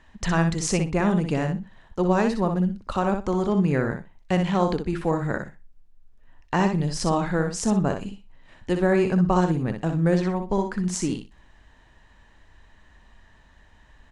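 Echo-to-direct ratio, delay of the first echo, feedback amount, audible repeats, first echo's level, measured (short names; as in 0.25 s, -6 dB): -6.5 dB, 61 ms, 17%, 2, -6.5 dB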